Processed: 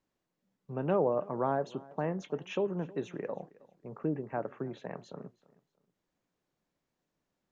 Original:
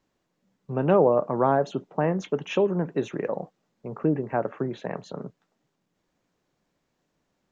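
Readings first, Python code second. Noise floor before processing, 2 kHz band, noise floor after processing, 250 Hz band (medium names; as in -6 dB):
-77 dBFS, -9.0 dB, -85 dBFS, -9.0 dB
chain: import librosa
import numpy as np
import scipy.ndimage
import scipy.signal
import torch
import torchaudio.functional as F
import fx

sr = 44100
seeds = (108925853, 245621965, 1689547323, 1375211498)

y = fx.echo_feedback(x, sr, ms=317, feedback_pct=29, wet_db=-22)
y = y * 10.0 ** (-9.0 / 20.0)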